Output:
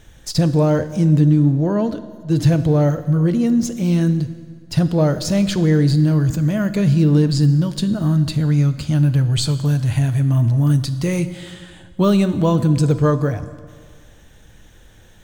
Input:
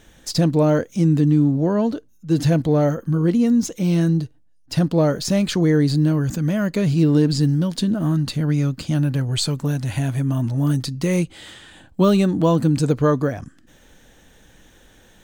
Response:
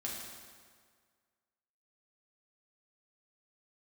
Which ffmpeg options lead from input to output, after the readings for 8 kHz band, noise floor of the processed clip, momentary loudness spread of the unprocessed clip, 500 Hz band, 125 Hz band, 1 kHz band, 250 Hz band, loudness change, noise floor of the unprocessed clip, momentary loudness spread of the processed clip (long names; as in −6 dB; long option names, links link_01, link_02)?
+0.5 dB, −46 dBFS, 7 LU, 0.0 dB, +4.0 dB, 0.0 dB, +1.0 dB, +2.5 dB, −53 dBFS, 8 LU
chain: -filter_complex "[0:a]lowshelf=frequency=160:width_type=q:width=1.5:gain=6,asplit=2[link_01][link_02];[1:a]atrim=start_sample=2205,asetrate=41013,aresample=44100[link_03];[link_02][link_03]afir=irnorm=-1:irlink=0,volume=-9.5dB[link_04];[link_01][link_04]amix=inputs=2:normalize=0,volume=-1.5dB"